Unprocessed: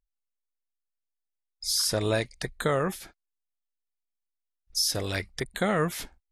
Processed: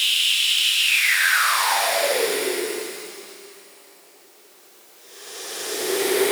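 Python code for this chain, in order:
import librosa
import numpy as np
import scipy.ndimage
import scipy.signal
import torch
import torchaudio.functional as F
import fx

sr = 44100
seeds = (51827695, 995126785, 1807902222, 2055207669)

y = fx.spec_flatten(x, sr, power=0.26)
y = fx.paulstretch(y, sr, seeds[0], factor=19.0, window_s=0.1, from_s=5.08)
y = fx.filter_sweep_highpass(y, sr, from_hz=2900.0, to_hz=390.0, start_s=0.83, end_s=2.35, q=6.8)
y = y * 10.0 ** (5.5 / 20.0)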